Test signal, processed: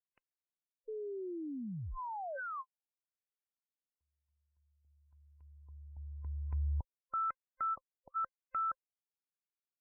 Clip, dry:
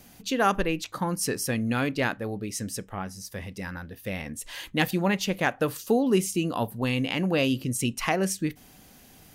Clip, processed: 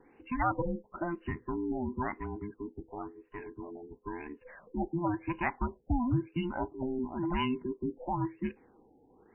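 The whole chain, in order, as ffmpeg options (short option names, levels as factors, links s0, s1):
-af "afftfilt=real='real(if(between(b,1,1008),(2*floor((b-1)/24)+1)*24-b,b),0)':imag='imag(if(between(b,1,1008),(2*floor((b-1)/24)+1)*24-b,b),0)*if(between(b,1,1008),-1,1)':win_size=2048:overlap=0.75,afftfilt=real='re*lt(b*sr/1024,860*pow(3000/860,0.5+0.5*sin(2*PI*0.97*pts/sr)))':imag='im*lt(b*sr/1024,860*pow(3000/860,0.5+0.5*sin(2*PI*0.97*pts/sr)))':win_size=1024:overlap=0.75,volume=0.473"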